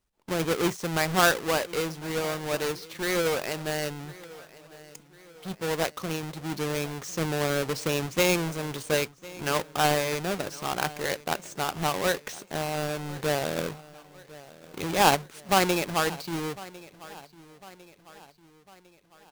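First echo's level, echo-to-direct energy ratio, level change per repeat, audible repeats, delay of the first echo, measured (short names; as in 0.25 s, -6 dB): -20.0 dB, -19.0 dB, -6.0 dB, 3, 1.052 s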